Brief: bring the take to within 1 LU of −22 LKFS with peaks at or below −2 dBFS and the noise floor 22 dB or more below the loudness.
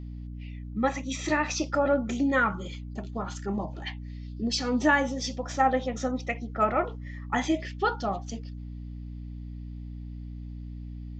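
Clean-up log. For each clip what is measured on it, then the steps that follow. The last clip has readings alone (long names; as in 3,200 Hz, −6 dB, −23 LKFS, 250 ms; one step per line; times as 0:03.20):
mains hum 60 Hz; hum harmonics up to 300 Hz; level of the hum −36 dBFS; integrated loudness −28.5 LKFS; sample peak −10.0 dBFS; target loudness −22.0 LKFS
→ mains-hum notches 60/120/180/240/300 Hz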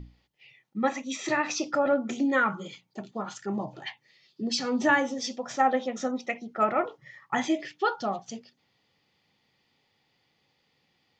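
mains hum none found; integrated loudness −28.5 LKFS; sample peak −9.5 dBFS; target loudness −22.0 LKFS
→ level +6.5 dB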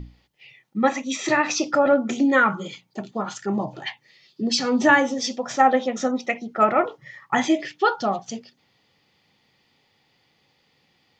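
integrated loudness −22.0 LKFS; sample peak −3.0 dBFS; background noise floor −66 dBFS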